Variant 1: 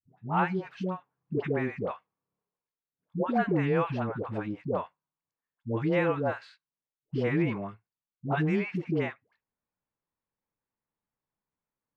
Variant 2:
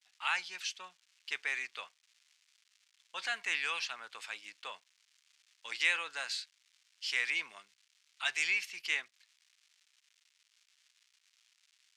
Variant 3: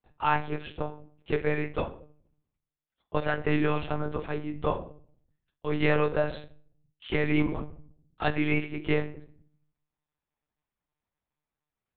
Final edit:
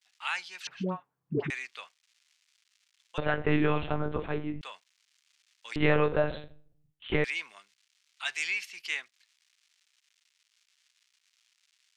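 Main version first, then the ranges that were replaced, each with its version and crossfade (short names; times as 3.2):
2
0.67–1.5 from 1
3.18–4.61 from 3
5.76–7.24 from 3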